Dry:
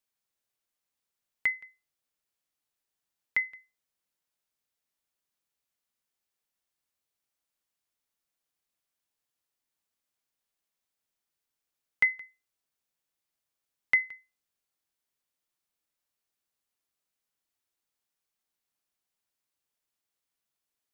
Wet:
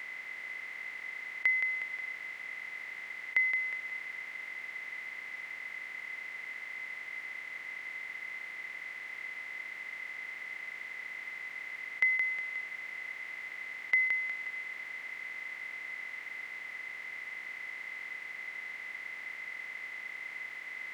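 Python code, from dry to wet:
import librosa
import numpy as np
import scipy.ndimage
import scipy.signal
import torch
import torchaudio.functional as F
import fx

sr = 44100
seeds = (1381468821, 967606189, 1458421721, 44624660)

y = fx.bin_compress(x, sr, power=0.2)
y = fx.highpass(y, sr, hz=280.0, slope=6)
y = y + 10.0 ** (-10.0 / 20.0) * np.pad(y, (int(362 * sr / 1000.0), 0))[:len(y)]
y = y * 10.0 ** (-5.5 / 20.0)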